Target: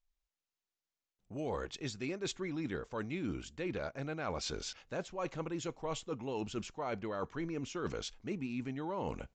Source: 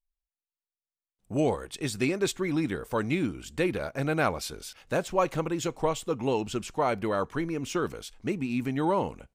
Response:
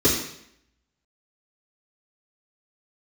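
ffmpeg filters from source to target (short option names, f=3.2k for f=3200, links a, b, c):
-af "areverse,acompressor=threshold=-38dB:ratio=12,areverse,aresample=16000,aresample=44100,volume=3dB"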